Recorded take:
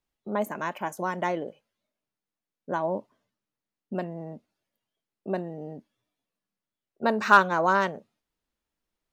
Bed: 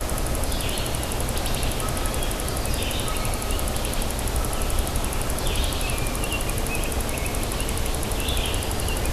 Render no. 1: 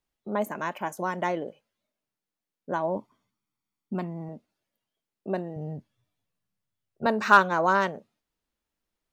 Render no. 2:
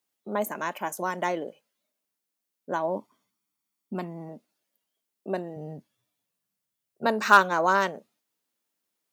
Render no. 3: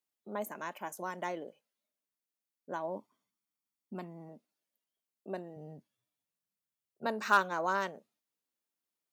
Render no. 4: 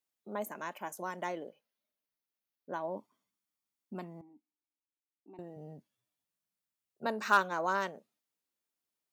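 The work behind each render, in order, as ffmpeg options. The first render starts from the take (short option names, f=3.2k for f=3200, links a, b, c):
-filter_complex "[0:a]asettb=1/sr,asplit=3[a][b][c];[a]atrim=end=2.964[d];[b]atrim=start=2.96:end=4.29,asetpts=PTS-STARTPTS,afade=t=in:d=0.004:c=qsin,afade=t=out:st=1.326:d=0.004:c=qsin,aecho=1:1:0.9:0.57,atrim=end_sample=58653[e];[c]atrim=start=4.286[f];[d][e]acrossfade=d=0.004:c1=hsin:c2=qsin[g];[g][f]acrossfade=d=0.004:c1=qsin:c2=hsin,asettb=1/sr,asplit=3[h][i][j];[h]atrim=end=5.564[k];[i]atrim=start=5.56:end=7.06,asetpts=PTS-STARTPTS,afade=t=in:d=0.004:c=qsin,afade=t=out:st=1.496:d=0.004:c=qsin,lowshelf=f=180:t=q:w=1.5:g=10[l];[j]atrim=start=7.056[m];[k][l]acrossfade=d=0.004:c1=hsin:c2=qsin[n];[n][m]acrossfade=d=0.004:c1=qsin:c2=hsin"
-af "highpass=190,highshelf=f=5.7k:g=10"
-af "volume=-9.5dB"
-filter_complex "[0:a]asettb=1/sr,asplit=3[a][b][c];[a]atrim=end=1.484[d];[b]atrim=start=1.48:end=2.98,asetpts=PTS-STARTPTS,afade=t=in:d=0.004:c=qsin,afade=t=out:st=1.496:d=0.004:c=qsin,equalizer=f=7.8k:w=3:g=-12.5[e];[c]atrim=start=2.976[f];[d][e]acrossfade=d=0.004:c1=hsin:c2=qsin[g];[g][f]acrossfade=d=0.004:c1=qsin:c2=hsin,asettb=1/sr,asplit=3[h][i][j];[h]atrim=end=4.214[k];[i]atrim=start=4.21:end=5.39,asetpts=PTS-STARTPTS,afade=t=in:d=0.004:c=qsin,afade=t=out:st=1.176:d=0.004:c=qsin,asplit=3[l][m][n];[l]bandpass=f=300:t=q:w=8,volume=0dB[o];[m]bandpass=f=870:t=q:w=8,volume=-6dB[p];[n]bandpass=f=2.24k:t=q:w=8,volume=-9dB[q];[o][p][q]amix=inputs=3:normalize=0[r];[j]atrim=start=5.386[s];[k][r]acrossfade=d=0.004:c1=hsin:c2=qsin[t];[t][s]acrossfade=d=0.004:c1=qsin:c2=hsin"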